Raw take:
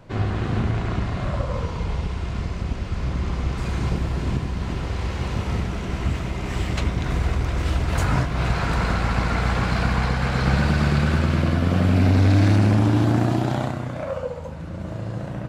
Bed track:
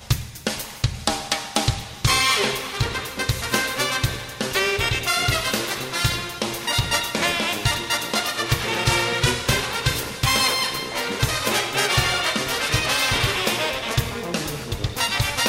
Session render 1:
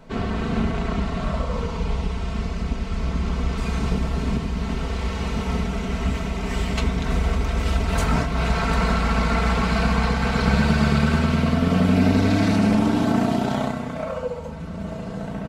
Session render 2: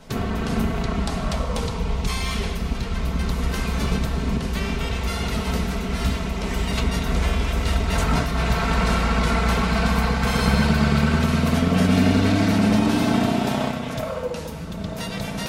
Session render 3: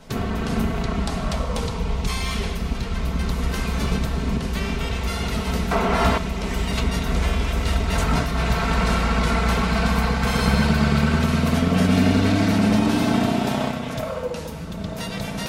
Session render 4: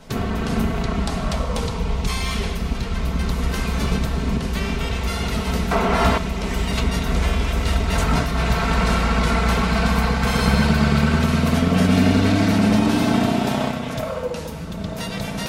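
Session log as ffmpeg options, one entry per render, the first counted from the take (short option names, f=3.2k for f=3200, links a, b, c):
-af "bandreject=f=1.7k:w=13,aecho=1:1:4.5:0.77"
-filter_complex "[1:a]volume=-11.5dB[a];[0:a][a]amix=inputs=2:normalize=0"
-filter_complex "[0:a]asettb=1/sr,asplit=3[a][b][c];[a]atrim=end=5.714[d];[b]atrim=start=5.71:end=6.18,asetpts=PTS-STARTPTS,afade=t=in:d=0.004:c=qsin,afade=t=out:st=0.466:d=0.004:c=qsin,equalizer=f=860:t=o:w=2.5:g=14.5[e];[c]atrim=start=6.176[f];[d][e]acrossfade=d=0.004:c1=hsin:c2=qsin[g];[g][f]acrossfade=d=0.004:c1=qsin:c2=hsin"
-af "volume=1.5dB"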